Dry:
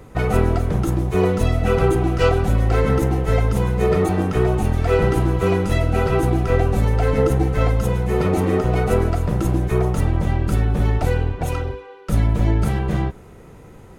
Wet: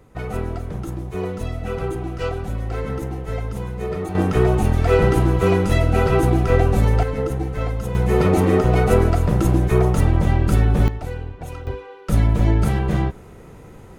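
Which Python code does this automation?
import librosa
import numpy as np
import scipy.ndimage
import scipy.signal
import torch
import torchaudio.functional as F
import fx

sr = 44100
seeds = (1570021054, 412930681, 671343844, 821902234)

y = fx.gain(x, sr, db=fx.steps((0.0, -8.5), (4.15, 1.5), (7.03, -6.0), (7.95, 2.5), (10.88, -9.5), (11.67, 1.0)))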